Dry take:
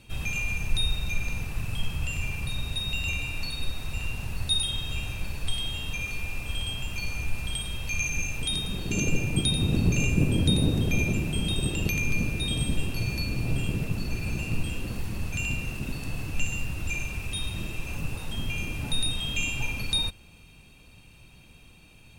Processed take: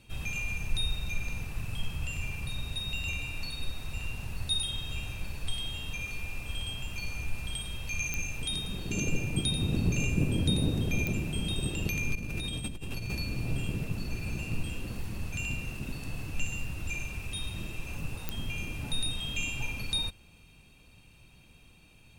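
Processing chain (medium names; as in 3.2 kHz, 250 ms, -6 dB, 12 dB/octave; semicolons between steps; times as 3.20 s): 12.15–13.15 s: compressor with a negative ratio -31 dBFS, ratio -1; clicks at 8.14/11.07/18.29 s, -12 dBFS; trim -4.5 dB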